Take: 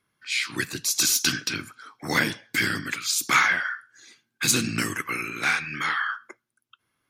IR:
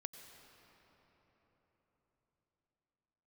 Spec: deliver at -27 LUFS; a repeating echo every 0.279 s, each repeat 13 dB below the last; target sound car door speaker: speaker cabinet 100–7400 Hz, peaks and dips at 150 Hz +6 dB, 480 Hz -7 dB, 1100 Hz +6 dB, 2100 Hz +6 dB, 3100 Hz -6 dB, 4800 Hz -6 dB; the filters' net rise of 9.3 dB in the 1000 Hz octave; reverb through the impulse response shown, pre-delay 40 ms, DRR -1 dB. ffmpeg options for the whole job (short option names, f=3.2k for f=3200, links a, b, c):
-filter_complex "[0:a]equalizer=f=1k:t=o:g=8.5,aecho=1:1:279|558|837:0.224|0.0493|0.0108,asplit=2[a][b];[1:a]atrim=start_sample=2205,adelay=40[c];[b][c]afir=irnorm=-1:irlink=0,volume=4.5dB[d];[a][d]amix=inputs=2:normalize=0,highpass=100,equalizer=f=150:t=q:w=4:g=6,equalizer=f=480:t=q:w=4:g=-7,equalizer=f=1.1k:t=q:w=4:g=6,equalizer=f=2.1k:t=q:w=4:g=6,equalizer=f=3.1k:t=q:w=4:g=-6,equalizer=f=4.8k:t=q:w=4:g=-6,lowpass=f=7.4k:w=0.5412,lowpass=f=7.4k:w=1.3066,volume=-9.5dB"